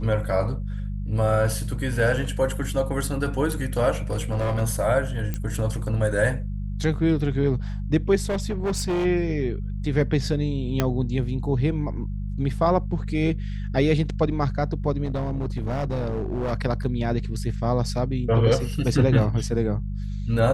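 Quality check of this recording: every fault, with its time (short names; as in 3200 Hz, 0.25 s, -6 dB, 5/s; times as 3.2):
hum 50 Hz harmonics 4 -29 dBFS
3.94–4.62 clipped -20 dBFS
5.34 pop -15 dBFS
8.24–9.06 clipped -21 dBFS
10.8 pop -7 dBFS
15.04–16.53 clipped -22 dBFS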